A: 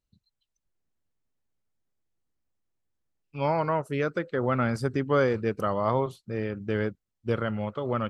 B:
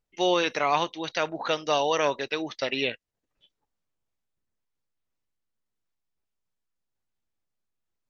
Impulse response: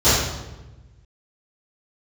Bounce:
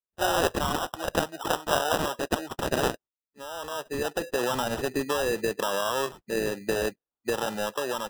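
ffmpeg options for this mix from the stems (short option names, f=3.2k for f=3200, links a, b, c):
-filter_complex "[0:a]highpass=430,alimiter=level_in=0.5dB:limit=-24dB:level=0:latency=1:release=17,volume=-0.5dB,dynaudnorm=f=420:g=5:m=11.5dB,volume=-1.5dB[a];[1:a]agate=range=-18dB:threshold=-49dB:ratio=16:detection=peak,tiltshelf=f=1.5k:g=-8.5,volume=1.5dB,asplit=2[b][c];[c]apad=whole_len=357037[d];[a][d]sidechaincompress=threshold=-48dB:ratio=4:attack=7:release=672[e];[e][b]amix=inputs=2:normalize=0,afftdn=nr=16:nf=-43,acrossover=split=180|3000[f][g][h];[g]acompressor=threshold=-24dB:ratio=5[i];[f][i][h]amix=inputs=3:normalize=0,acrusher=samples=20:mix=1:aa=0.000001"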